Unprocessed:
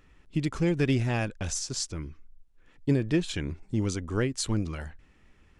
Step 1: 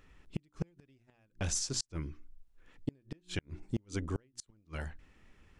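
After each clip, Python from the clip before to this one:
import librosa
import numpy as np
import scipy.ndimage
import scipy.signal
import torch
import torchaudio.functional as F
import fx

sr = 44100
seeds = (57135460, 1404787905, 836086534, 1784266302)

y = fx.hum_notches(x, sr, base_hz=60, count=6)
y = fx.gate_flip(y, sr, shuts_db=-20.0, range_db=-38)
y = y * 10.0 ** (-1.5 / 20.0)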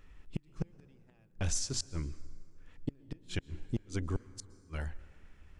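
y = fx.low_shelf(x, sr, hz=62.0, db=10.0)
y = fx.rev_plate(y, sr, seeds[0], rt60_s=2.5, hf_ratio=0.55, predelay_ms=105, drr_db=18.5)
y = y * 10.0 ** (-1.0 / 20.0)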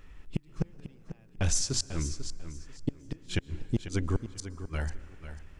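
y = fx.echo_feedback(x, sr, ms=494, feedback_pct=21, wet_db=-11.5)
y = y * 10.0 ** (5.5 / 20.0)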